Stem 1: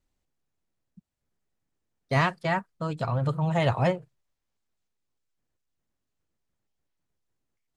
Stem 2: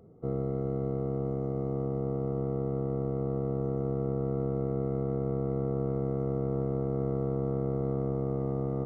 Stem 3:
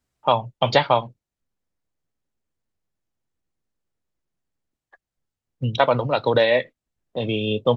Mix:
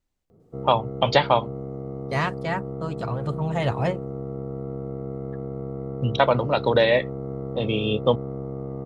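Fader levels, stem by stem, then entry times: −1.0, −1.5, −1.0 decibels; 0.00, 0.30, 0.40 seconds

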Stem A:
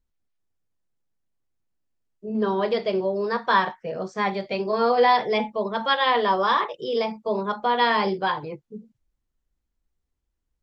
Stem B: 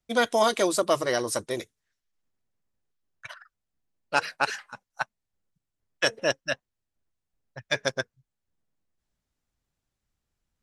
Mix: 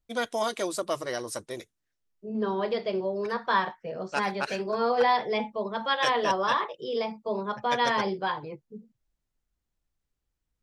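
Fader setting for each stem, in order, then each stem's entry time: −5.0, −6.5 decibels; 0.00, 0.00 seconds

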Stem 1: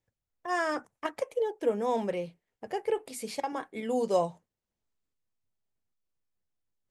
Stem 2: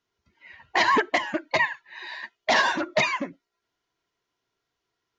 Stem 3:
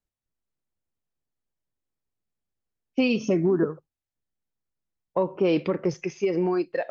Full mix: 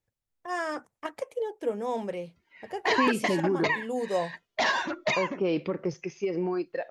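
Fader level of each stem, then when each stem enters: −2.0, −5.0, −5.0 decibels; 0.00, 2.10, 0.00 seconds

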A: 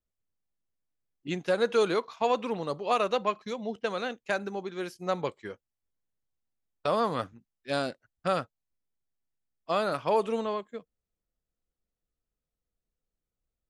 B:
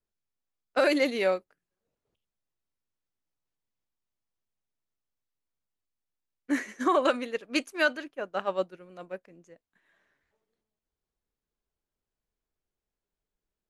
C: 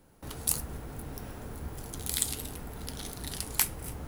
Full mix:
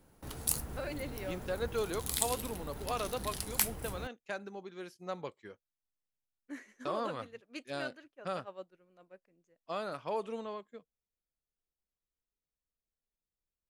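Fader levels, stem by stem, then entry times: −10.0, −17.0, −3.0 decibels; 0.00, 0.00, 0.00 seconds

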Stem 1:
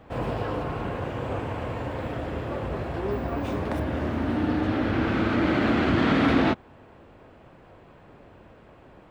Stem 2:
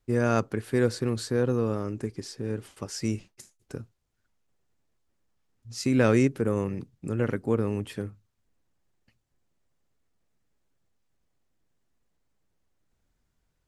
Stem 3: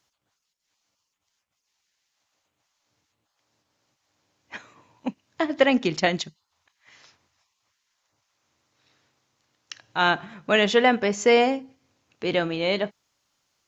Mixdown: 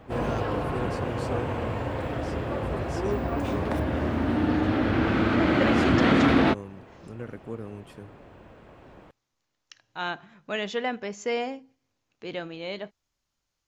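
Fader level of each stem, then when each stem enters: +1.0, −11.0, −10.5 decibels; 0.00, 0.00, 0.00 seconds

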